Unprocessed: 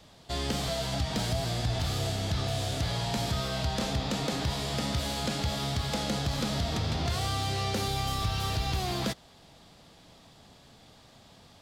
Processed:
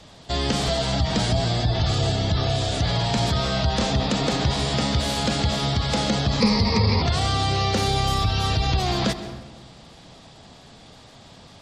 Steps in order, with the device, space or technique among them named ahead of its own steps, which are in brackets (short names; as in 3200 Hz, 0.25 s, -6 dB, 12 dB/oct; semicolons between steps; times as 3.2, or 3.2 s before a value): spectral gate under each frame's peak -30 dB strong; saturated reverb return (on a send at -10 dB: reverb RT60 1.2 s, pre-delay 0.119 s + soft clip -23 dBFS, distortion -19 dB); 6.4–7.02 on the sum: ripple EQ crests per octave 0.88, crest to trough 16 dB; gain +8 dB